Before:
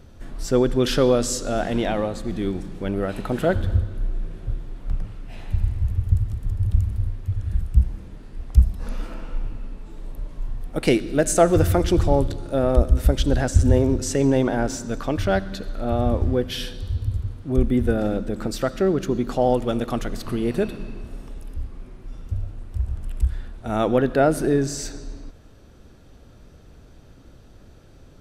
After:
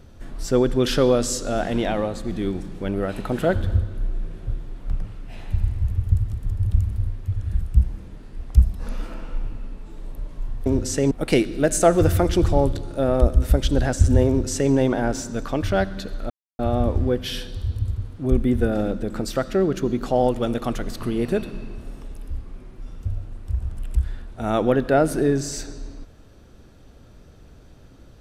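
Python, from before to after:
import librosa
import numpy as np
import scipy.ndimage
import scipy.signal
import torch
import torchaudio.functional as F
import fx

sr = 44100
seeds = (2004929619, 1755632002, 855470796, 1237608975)

y = fx.edit(x, sr, fx.duplicate(start_s=13.83, length_s=0.45, to_s=10.66),
    fx.insert_silence(at_s=15.85, length_s=0.29), tone=tone)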